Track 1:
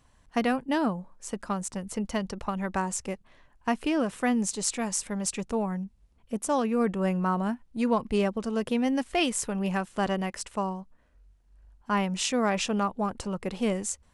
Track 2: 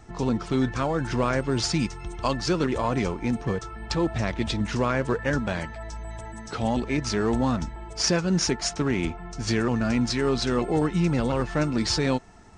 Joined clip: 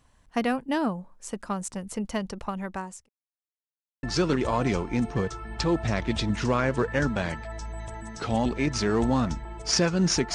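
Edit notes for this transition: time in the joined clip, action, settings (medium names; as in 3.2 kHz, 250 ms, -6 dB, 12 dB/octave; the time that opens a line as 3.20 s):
track 1
2.26–3.09 s: fade out equal-power
3.09–4.03 s: mute
4.03 s: go over to track 2 from 2.34 s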